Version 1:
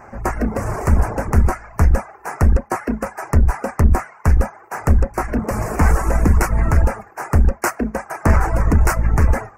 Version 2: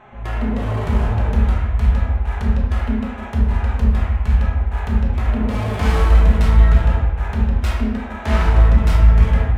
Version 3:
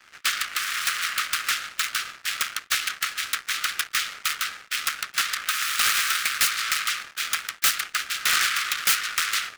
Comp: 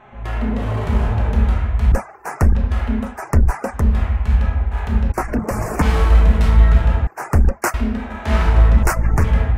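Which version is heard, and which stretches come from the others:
2
1.92–2.55 s: from 1
3.11–3.81 s: from 1, crossfade 0.24 s
5.12–5.82 s: from 1
7.07–7.74 s: from 1
8.83–9.24 s: from 1
not used: 3

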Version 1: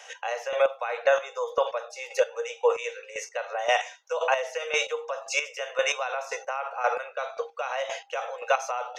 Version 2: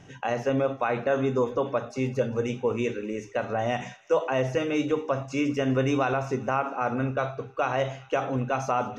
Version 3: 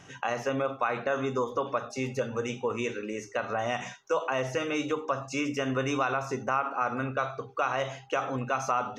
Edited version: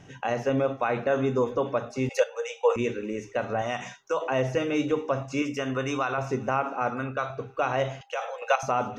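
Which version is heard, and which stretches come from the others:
2
2.09–2.76 s: from 1
3.62–4.21 s: from 3
5.42–6.18 s: from 3
6.90–7.30 s: from 3
8.01–8.63 s: from 1

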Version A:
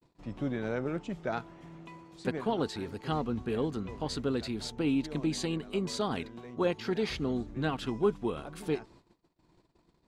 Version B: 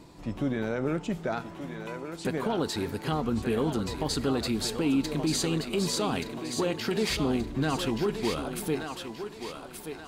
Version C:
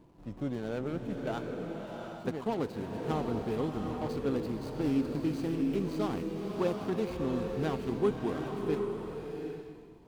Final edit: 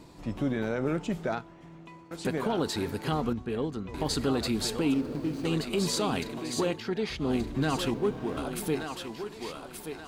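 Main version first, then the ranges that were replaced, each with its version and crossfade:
B
1.35–2.11 s: from A
3.33–3.94 s: from A
4.94–5.45 s: from C
6.76–7.26 s: from A, crossfade 0.16 s
7.94–8.37 s: from C

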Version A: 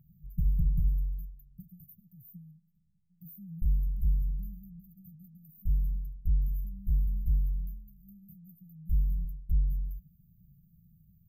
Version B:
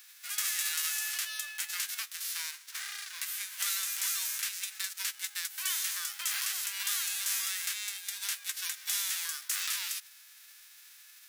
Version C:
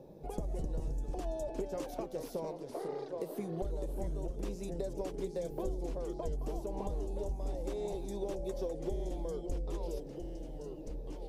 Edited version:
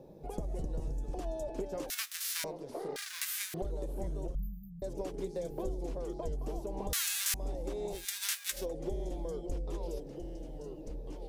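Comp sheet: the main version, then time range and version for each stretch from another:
C
1.90–2.44 s: from B
2.96–3.54 s: from B
4.35–4.82 s: from A
6.93–7.34 s: from B
7.98–8.58 s: from B, crossfade 0.16 s

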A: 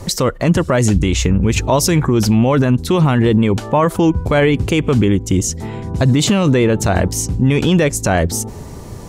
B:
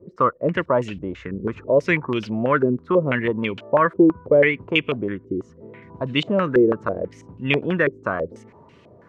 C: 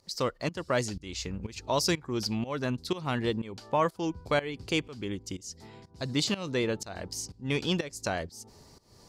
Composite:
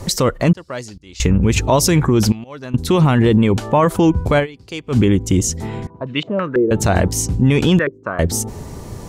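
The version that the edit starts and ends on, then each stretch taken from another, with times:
A
0.53–1.20 s: from C
2.32–2.74 s: from C
4.42–4.92 s: from C, crossfade 0.10 s
5.87–6.71 s: from B
7.79–8.19 s: from B

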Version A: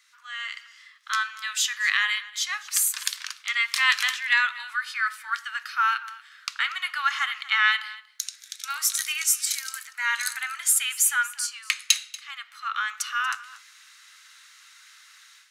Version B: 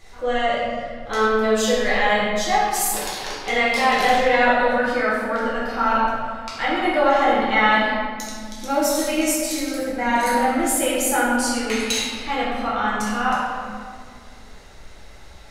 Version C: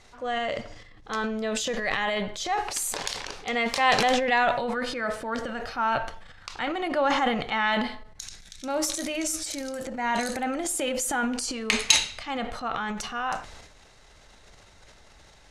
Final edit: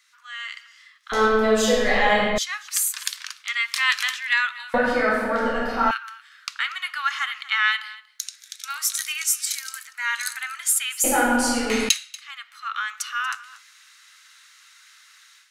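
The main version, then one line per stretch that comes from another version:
A
1.12–2.38 s: from B
4.74–5.91 s: from B
11.04–11.89 s: from B
not used: C

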